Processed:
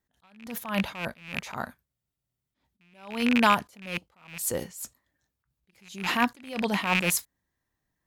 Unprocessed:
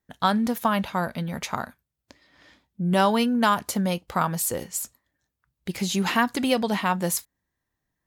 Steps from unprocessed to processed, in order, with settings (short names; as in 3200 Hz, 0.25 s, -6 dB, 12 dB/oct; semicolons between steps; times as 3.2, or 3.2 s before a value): rattling part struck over -31 dBFS, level -12 dBFS; spectral freeze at 1.88, 0.68 s; attack slew limiter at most 110 dB/s